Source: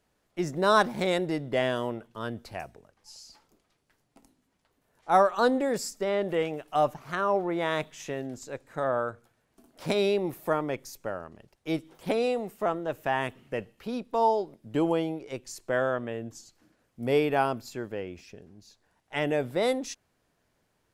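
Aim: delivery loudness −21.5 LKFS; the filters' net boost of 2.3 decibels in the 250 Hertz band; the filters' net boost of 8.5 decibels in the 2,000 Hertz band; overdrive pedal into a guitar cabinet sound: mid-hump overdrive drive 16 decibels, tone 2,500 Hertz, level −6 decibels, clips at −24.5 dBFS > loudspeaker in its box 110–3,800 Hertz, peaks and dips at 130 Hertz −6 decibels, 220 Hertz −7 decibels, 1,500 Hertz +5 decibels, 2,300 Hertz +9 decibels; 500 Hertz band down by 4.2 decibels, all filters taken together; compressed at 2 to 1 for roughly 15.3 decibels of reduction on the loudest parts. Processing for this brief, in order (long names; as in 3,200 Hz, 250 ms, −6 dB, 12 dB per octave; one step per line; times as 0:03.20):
parametric band 250 Hz +9 dB
parametric band 500 Hz −8 dB
parametric band 2,000 Hz +4.5 dB
downward compressor 2 to 1, threshold −47 dBFS
mid-hump overdrive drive 16 dB, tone 2,500 Hz, level −6 dB, clips at −24.5 dBFS
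loudspeaker in its box 110–3,800 Hz, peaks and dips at 130 Hz −6 dB, 220 Hz −7 dB, 1,500 Hz +5 dB, 2,300 Hz +9 dB
level +15 dB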